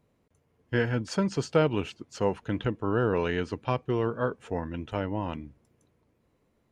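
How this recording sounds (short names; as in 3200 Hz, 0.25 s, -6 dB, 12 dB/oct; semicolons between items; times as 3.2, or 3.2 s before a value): noise floor -71 dBFS; spectral tilt -6.0 dB/oct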